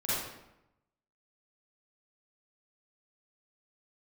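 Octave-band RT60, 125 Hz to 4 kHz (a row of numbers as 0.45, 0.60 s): 1.0, 1.0, 0.90, 0.90, 0.80, 0.65 s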